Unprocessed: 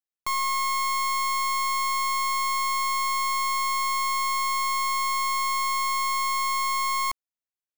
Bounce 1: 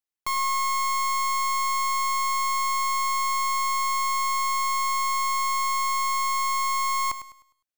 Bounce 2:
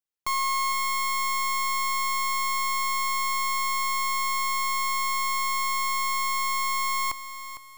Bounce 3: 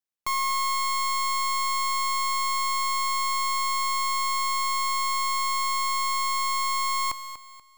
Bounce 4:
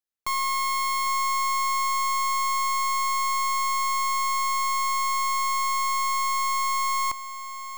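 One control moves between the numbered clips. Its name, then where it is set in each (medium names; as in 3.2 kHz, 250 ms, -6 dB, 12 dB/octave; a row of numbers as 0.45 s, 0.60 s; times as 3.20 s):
bit-crushed delay, time: 102 ms, 455 ms, 241 ms, 802 ms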